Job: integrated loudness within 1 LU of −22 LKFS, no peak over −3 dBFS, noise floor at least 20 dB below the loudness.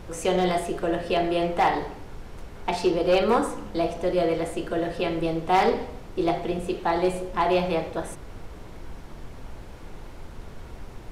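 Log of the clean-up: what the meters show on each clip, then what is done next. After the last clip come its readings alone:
share of clipped samples 0.4%; peaks flattened at −14.0 dBFS; background noise floor −42 dBFS; target noise floor −46 dBFS; integrated loudness −25.5 LKFS; sample peak −14.0 dBFS; target loudness −22.0 LKFS
→ clipped peaks rebuilt −14 dBFS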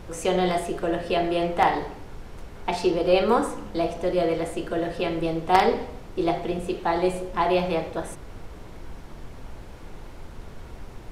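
share of clipped samples 0.0%; background noise floor −42 dBFS; target noise floor −45 dBFS
→ noise reduction from a noise print 6 dB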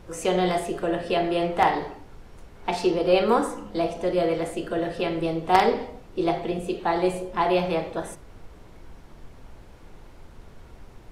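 background noise floor −48 dBFS; integrated loudness −25.0 LKFS; sample peak −5.0 dBFS; target loudness −22.0 LKFS
→ level +3 dB
brickwall limiter −3 dBFS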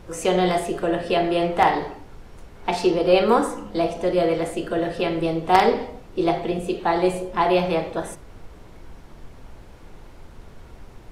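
integrated loudness −22.0 LKFS; sample peak −3.0 dBFS; background noise floor −45 dBFS

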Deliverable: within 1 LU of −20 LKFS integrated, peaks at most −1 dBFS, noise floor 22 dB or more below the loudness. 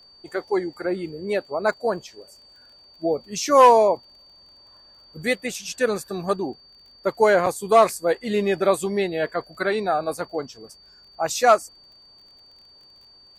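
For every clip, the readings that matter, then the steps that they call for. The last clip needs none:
crackle rate 29 per second; interfering tone 4,600 Hz; level of the tone −49 dBFS; integrated loudness −22.0 LKFS; sample peak −5.0 dBFS; target loudness −20.0 LKFS
→ click removal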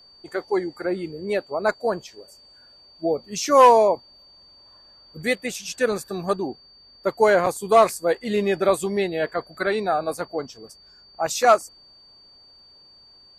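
crackle rate 0.075 per second; interfering tone 4,600 Hz; level of the tone −49 dBFS
→ notch filter 4,600 Hz, Q 30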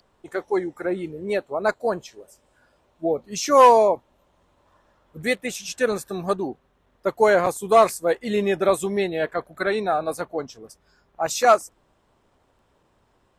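interfering tone none found; integrated loudness −22.0 LKFS; sample peak −5.0 dBFS; target loudness −20.0 LKFS
→ level +2 dB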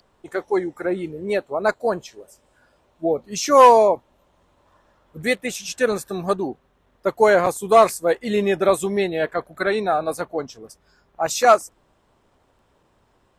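integrated loudness −20.0 LKFS; sample peak −3.0 dBFS; background noise floor −63 dBFS

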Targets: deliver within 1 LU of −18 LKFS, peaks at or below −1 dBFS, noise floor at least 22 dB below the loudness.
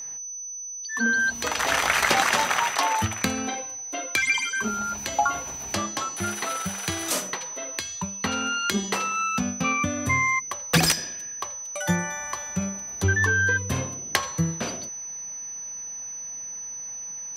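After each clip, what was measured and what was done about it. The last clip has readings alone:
interfering tone 6,000 Hz; level of the tone −33 dBFS; integrated loudness −25.5 LKFS; sample peak −4.5 dBFS; target loudness −18.0 LKFS
→ notch filter 6,000 Hz, Q 30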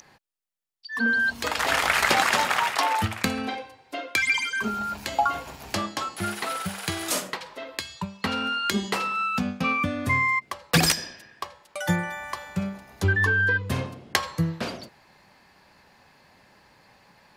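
interfering tone none found; integrated loudness −25.5 LKFS; sample peak −5.0 dBFS; target loudness −18.0 LKFS
→ level +7.5 dB
brickwall limiter −1 dBFS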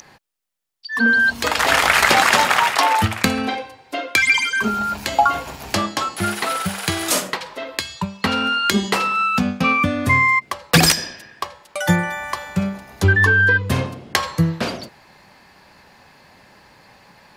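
integrated loudness −18.0 LKFS; sample peak −1.0 dBFS; background noise floor −51 dBFS

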